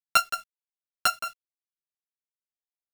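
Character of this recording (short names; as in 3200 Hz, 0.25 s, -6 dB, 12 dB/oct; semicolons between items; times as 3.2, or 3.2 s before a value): a buzz of ramps at a fixed pitch in blocks of 32 samples; tremolo saw down 8 Hz, depth 60%; a quantiser's noise floor 10-bit, dither none; a shimmering, thickened sound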